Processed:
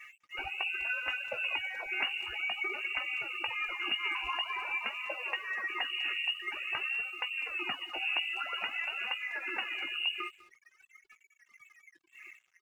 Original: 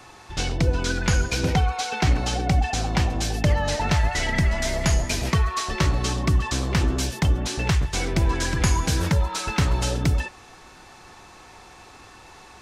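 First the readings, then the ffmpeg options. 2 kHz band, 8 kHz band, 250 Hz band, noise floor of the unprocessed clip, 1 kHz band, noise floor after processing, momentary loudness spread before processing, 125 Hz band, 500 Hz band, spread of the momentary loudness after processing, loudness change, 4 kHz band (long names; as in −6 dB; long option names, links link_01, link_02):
−2.5 dB, below −30 dB, −28.0 dB, −47 dBFS, −12.5 dB, −71 dBFS, 3 LU, below −40 dB, −19.0 dB, 4 LU, −10.0 dB, −4.5 dB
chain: -filter_complex "[0:a]aphaser=in_gain=1:out_gain=1:delay=4.1:decay=0.64:speed=0.49:type=sinusoidal,highpass=frequency=140:width=0.5412,highpass=frequency=140:width=1.3066,acompressor=threshold=-25dB:ratio=4,lowpass=frequency=2600:width_type=q:width=0.5098,lowpass=frequency=2600:width_type=q:width=0.6013,lowpass=frequency=2600:width_type=q:width=0.9,lowpass=frequency=2600:width_type=q:width=2.563,afreqshift=-3000,afftfilt=real='re*gte(hypot(re,im),0.0251)':imag='im*gte(hypot(re,im),0.0251)':win_size=1024:overlap=0.75,asplit=2[link_01][link_02];[link_02]adelay=18,volume=-10dB[link_03];[link_01][link_03]amix=inputs=2:normalize=0,asplit=2[link_04][link_05];[link_05]adelay=200,highpass=300,lowpass=3400,asoftclip=type=hard:threshold=-23.5dB,volume=-17dB[link_06];[link_04][link_06]amix=inputs=2:normalize=0,aeval=exprs='sgn(val(0))*max(abs(val(0))-0.00141,0)':channel_layout=same,volume=-6.5dB"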